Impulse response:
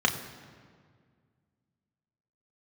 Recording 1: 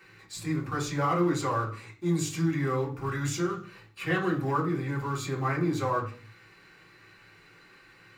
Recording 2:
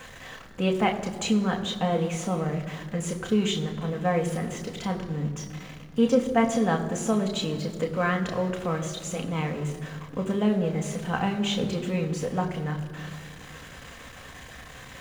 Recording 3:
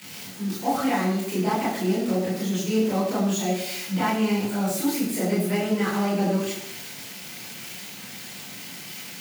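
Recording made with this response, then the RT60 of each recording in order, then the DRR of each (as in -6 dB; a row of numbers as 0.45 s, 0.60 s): 2; 0.45 s, 1.9 s, 0.85 s; -4.0 dB, 2.0 dB, -7.5 dB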